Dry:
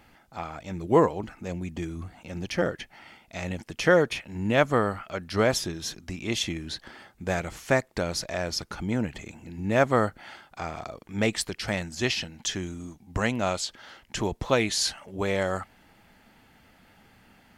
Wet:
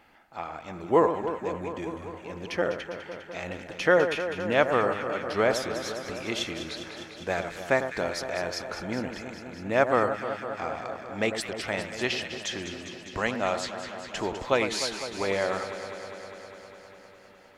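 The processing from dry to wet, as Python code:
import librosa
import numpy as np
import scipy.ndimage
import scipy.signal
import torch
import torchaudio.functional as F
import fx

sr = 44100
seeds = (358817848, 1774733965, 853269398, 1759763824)

y = fx.bass_treble(x, sr, bass_db=-10, treble_db=-7)
y = fx.echo_alternate(y, sr, ms=101, hz=1600.0, feedback_pct=87, wet_db=-8.5)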